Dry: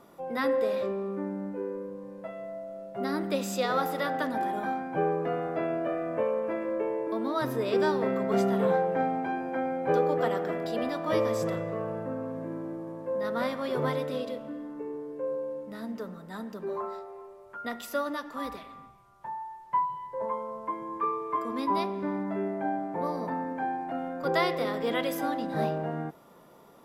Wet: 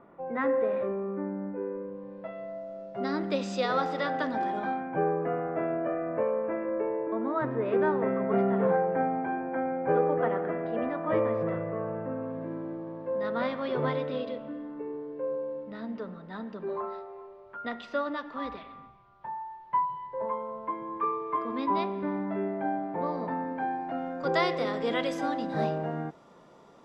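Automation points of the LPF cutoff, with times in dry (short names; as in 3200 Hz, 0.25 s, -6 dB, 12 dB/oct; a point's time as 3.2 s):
LPF 24 dB/oct
1.52 s 2200 Hz
2.66 s 5700 Hz
4.57 s 5700 Hz
5.01 s 2200 Hz
11.82 s 2200 Hz
12.46 s 4000 Hz
23.35 s 4000 Hz
24.37 s 7500 Hz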